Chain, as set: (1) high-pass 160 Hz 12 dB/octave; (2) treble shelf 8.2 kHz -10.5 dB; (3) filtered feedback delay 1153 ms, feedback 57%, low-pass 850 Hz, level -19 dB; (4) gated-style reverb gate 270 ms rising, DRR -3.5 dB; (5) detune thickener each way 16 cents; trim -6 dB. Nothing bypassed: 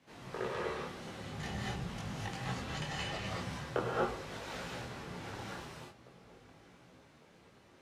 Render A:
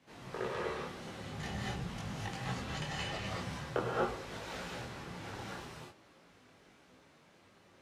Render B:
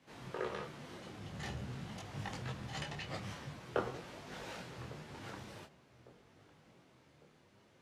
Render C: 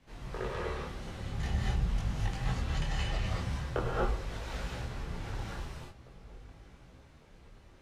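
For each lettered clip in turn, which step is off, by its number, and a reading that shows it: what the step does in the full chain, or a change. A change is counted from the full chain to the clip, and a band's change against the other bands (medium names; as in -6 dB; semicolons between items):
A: 3, momentary loudness spread change -12 LU; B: 4, crest factor change +4.5 dB; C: 1, 125 Hz band +8.0 dB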